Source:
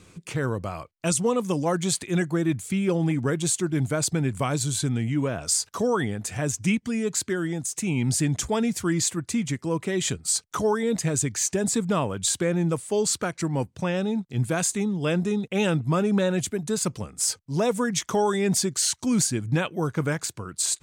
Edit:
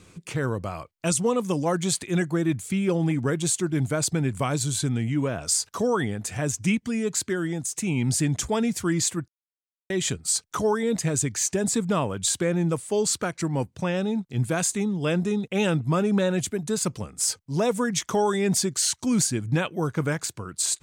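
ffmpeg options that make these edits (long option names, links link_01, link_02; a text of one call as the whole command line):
ffmpeg -i in.wav -filter_complex "[0:a]asplit=3[link_01][link_02][link_03];[link_01]atrim=end=9.28,asetpts=PTS-STARTPTS,afade=type=out:start_time=9.276:duration=0.004:curve=hsin[link_04];[link_02]atrim=start=9.28:end=9.9,asetpts=PTS-STARTPTS,volume=0[link_05];[link_03]atrim=start=9.9,asetpts=PTS-STARTPTS,afade=type=in:duration=0.004:curve=hsin[link_06];[link_04][link_05][link_06]concat=n=3:v=0:a=1" out.wav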